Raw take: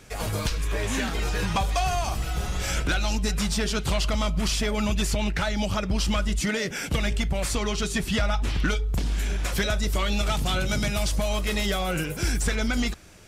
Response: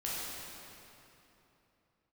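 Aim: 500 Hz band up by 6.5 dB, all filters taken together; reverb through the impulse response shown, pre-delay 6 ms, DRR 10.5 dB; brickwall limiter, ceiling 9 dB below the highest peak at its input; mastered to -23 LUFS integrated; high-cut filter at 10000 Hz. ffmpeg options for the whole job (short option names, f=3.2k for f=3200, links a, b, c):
-filter_complex "[0:a]lowpass=10k,equalizer=f=500:t=o:g=8.5,alimiter=limit=-20.5dB:level=0:latency=1,asplit=2[a][b];[1:a]atrim=start_sample=2205,adelay=6[c];[b][c]afir=irnorm=-1:irlink=0,volume=-15dB[d];[a][d]amix=inputs=2:normalize=0,volume=6.5dB"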